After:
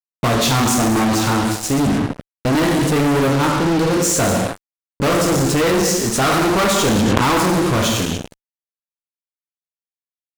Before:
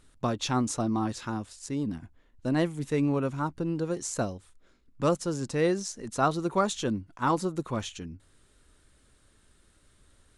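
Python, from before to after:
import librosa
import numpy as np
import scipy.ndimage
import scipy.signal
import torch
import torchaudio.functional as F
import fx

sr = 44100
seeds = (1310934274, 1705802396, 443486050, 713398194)

y = fx.rev_gated(x, sr, seeds[0], gate_ms=330, shape='falling', drr_db=0.0)
y = fx.fuzz(y, sr, gain_db=39.0, gate_db=-41.0)
y = fx.env_flatten(y, sr, amount_pct=100, at=(6.85, 7.38))
y = y * 10.0 ** (-1.0 / 20.0)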